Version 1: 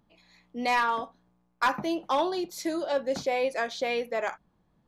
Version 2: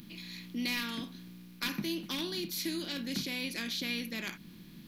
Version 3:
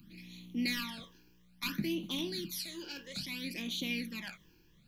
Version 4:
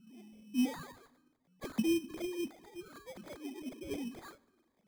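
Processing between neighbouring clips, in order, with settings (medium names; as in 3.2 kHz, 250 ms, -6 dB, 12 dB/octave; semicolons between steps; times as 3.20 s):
spectral levelling over time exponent 0.6; FFT filter 120 Hz 0 dB, 180 Hz +8 dB, 330 Hz -2 dB, 530 Hz -20 dB, 820 Hz -23 dB, 2.5 kHz +1 dB, 4.2 kHz +6 dB, 7.7 kHz -1 dB, 14 kHz +15 dB; in parallel at +0.5 dB: compression, threshold -38 dBFS, peak gain reduction 13 dB; on the sum: trim -7.5 dB
phase shifter stages 12, 0.6 Hz, lowest notch 200–1700 Hz; three bands expanded up and down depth 40%
formants replaced by sine waves; sample-rate reducer 2.8 kHz, jitter 0%; on a send at -22 dB: reverberation RT60 1.1 s, pre-delay 26 ms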